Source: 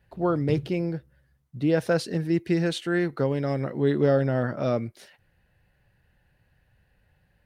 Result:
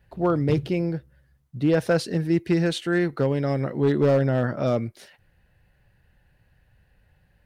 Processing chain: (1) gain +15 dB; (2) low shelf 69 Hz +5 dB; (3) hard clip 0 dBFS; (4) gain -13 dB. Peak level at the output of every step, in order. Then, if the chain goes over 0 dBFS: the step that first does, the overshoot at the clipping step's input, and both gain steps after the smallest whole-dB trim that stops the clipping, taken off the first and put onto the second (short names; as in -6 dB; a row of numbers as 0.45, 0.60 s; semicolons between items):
+5.0, +5.0, 0.0, -13.0 dBFS; step 1, 5.0 dB; step 1 +10 dB, step 4 -8 dB